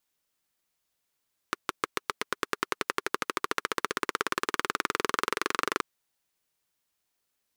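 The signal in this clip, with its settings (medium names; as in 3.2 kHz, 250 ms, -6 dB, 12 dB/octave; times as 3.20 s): single-cylinder engine model, changing speed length 4.28 s, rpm 700, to 2900, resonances 410/1200 Hz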